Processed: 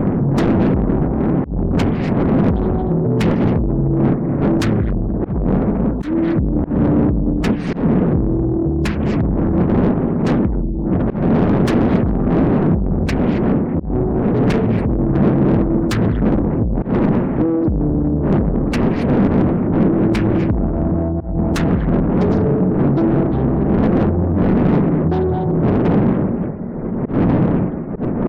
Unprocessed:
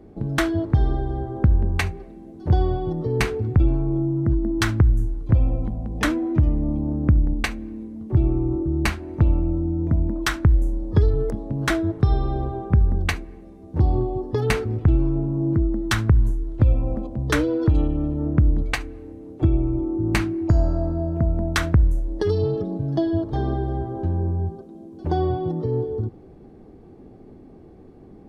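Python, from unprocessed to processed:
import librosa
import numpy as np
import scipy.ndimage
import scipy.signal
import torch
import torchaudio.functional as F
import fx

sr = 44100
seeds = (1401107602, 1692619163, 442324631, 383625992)

y = fx.dmg_wind(x, sr, seeds[0], corner_hz=430.0, level_db=-16.0)
y = fx.over_compress(y, sr, threshold_db=-15.0, ratio=-0.5)
y = fx.rev_gated(y, sr, seeds[1], gate_ms=300, shape='rising', drr_db=8.0)
y = fx.spec_gate(y, sr, threshold_db=-30, keep='strong')
y = fx.high_shelf(y, sr, hz=3800.0, db=5.0)
y = 10.0 ** (-18.0 / 20.0) * np.tanh(y / 10.0 ** (-18.0 / 20.0))
y = fx.peak_eq(y, sr, hz=200.0, db=13.0, octaves=1.6)
y = fx.auto_swell(y, sr, attack_ms=135.0)
y = fx.doppler_dist(y, sr, depth_ms=0.59)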